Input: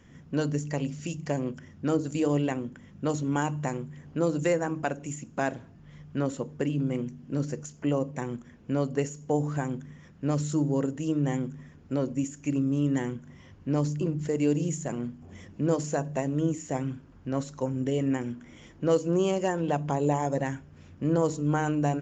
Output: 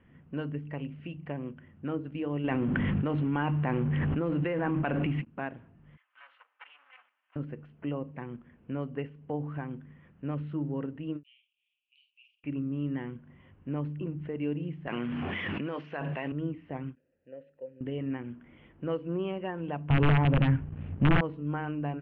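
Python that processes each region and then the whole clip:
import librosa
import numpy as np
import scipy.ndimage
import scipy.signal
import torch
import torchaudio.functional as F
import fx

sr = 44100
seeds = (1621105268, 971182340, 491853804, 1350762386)

y = fx.chain(x, sr, fx.law_mismatch(coded='mu'),
    fx.env_flatten(amount_pct=100), at=(2.44, 5.25))
y = fx.chain(y, sr, fx.lower_of_two(delay_ms=3.9),
    fx.highpass(hz=1200.0, slope=24), at=(5.97, 7.36))
y = fx.chain(y, sr, fx.steep_highpass(hz=2500.0, slope=96),
    fx.doubler(ms=49.0, db=-6), at=(11.23, 12.44))
y = fx.chain(y, sr, fx.highpass(hz=63.0, slope=12),
    fx.tilt_eq(slope=4.0),
    fx.env_flatten(amount_pct=100), at=(14.87, 16.32))
y = fx.chain(y, sr, fx.vowel_filter(vowel='e'),
    fx.low_shelf(hz=180.0, db=8.5), at=(16.95, 17.81))
y = fx.chain(y, sr, fx.overflow_wrap(gain_db=18.0),
    fx.bass_treble(bass_db=13, treble_db=3),
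    fx.leveller(passes=2), at=(19.9, 21.21))
y = scipy.signal.sosfilt(scipy.signal.ellip(4, 1.0, 60, 2900.0, 'lowpass', fs=sr, output='sos'), y)
y = fx.dynamic_eq(y, sr, hz=590.0, q=1.2, threshold_db=-39.0, ratio=4.0, max_db=-4)
y = fx.end_taper(y, sr, db_per_s=400.0)
y = y * 10.0 ** (-5.0 / 20.0)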